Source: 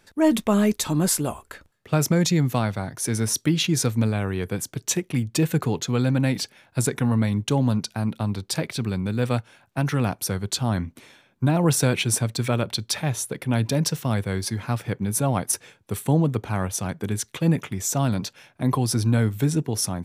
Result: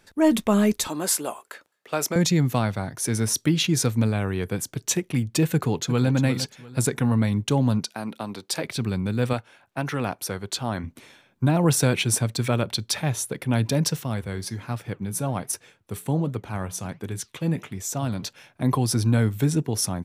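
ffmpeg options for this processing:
-filter_complex "[0:a]asettb=1/sr,asplit=3[a][b][c];[a]atrim=end=0.884[d];[b]atrim=start=0.88:end=2.16,asetpts=PTS-STARTPTS,afade=t=in:d=0.004:c=qsin,afade=t=out:st=1.276:d=0.004:c=qsin,highpass=400[e];[c]atrim=start=2.156[f];[d][e]acrossfade=d=0.004:c1=hsin:c2=qsin[g];[g][f]acrossfade=d=0.004:c1=qsin:c2=hsin,asplit=2[h][i];[i]afade=t=in:st=5.54:d=0.01,afade=t=out:st=6.1:d=0.01,aecho=0:1:350|700|1050:0.281838|0.0845515|0.0253654[j];[h][j]amix=inputs=2:normalize=0,asettb=1/sr,asplit=3[k][l][m];[k]atrim=end=7.854[n];[l]atrim=start=7.85:end=8.64,asetpts=PTS-STARTPTS,afade=t=in:d=0.004:c=qsin,afade=t=out:st=0.786:d=0.004:c=qsin,highpass=280[o];[m]atrim=start=8.636[p];[n][o]acrossfade=d=0.004:c1=hsin:c2=qsin[q];[q][p]acrossfade=d=0.004:c1=qsin:c2=hsin,asettb=1/sr,asplit=3[r][s][t];[r]atrim=end=9.334[u];[s]atrim=start=9.33:end=10.84,asetpts=PTS-STARTPTS,afade=t=in:d=0.004:c=qsin,afade=t=out:st=1.506:d=0.004:c=qsin,bass=f=250:g=-8,treble=f=4k:g=-4[v];[t]atrim=start=10.836[w];[u][v]acrossfade=d=0.004:c1=hsin:c2=qsin[x];[x][w]acrossfade=d=0.004:c1=qsin:c2=hsin,asettb=1/sr,asplit=3[y][z][aa];[y]atrim=end=14.044[ab];[z]atrim=start=14.04:end=18.24,asetpts=PTS-STARTPTS,afade=t=in:d=0.004:c=qsin,afade=t=out:st=4.196:d=0.004:c=qsin,flanger=delay=2.3:depth=6.2:regen=-87:speed=1.3:shape=sinusoidal[ac];[aa]atrim=start=18.236[ad];[ab][ac]acrossfade=d=0.004:c1=hsin:c2=qsin[ae];[ae][ad]acrossfade=d=0.004:c1=qsin:c2=hsin"

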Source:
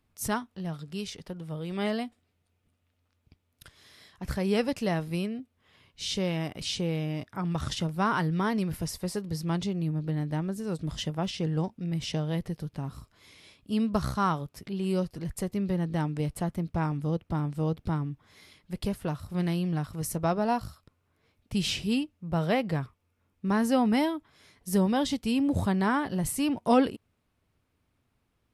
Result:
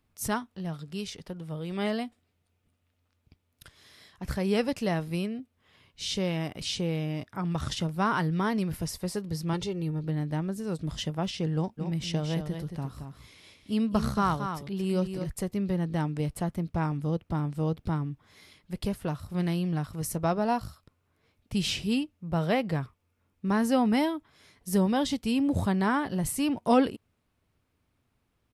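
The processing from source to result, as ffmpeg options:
-filter_complex "[0:a]asettb=1/sr,asplit=3[a][b][c];[a]atrim=end=9.534[d];[b]atrim=start=9.53:end=10.04,asetpts=PTS-STARTPTS,afade=t=in:d=0.004:c=qsin,afade=t=out:st=0.506:d=0.004:c=qsin,aecho=1:1:2.2:0.64,atrim=end_sample=22491[e];[c]atrim=start=10.036[f];[d][e]acrossfade=d=0.004:c1=hsin:c2=qsin[g];[g][f]acrossfade=d=0.004:c1=qsin:c2=hsin,asplit=3[h][i][j];[h]afade=t=out:st=11.77:d=0.02[k];[i]aecho=1:1:224:0.422,afade=t=in:st=11.77:d=0.02,afade=t=out:st=15.31:d=0.02[l];[j]afade=t=in:st=15.31:d=0.02[m];[k][l][m]amix=inputs=3:normalize=0"

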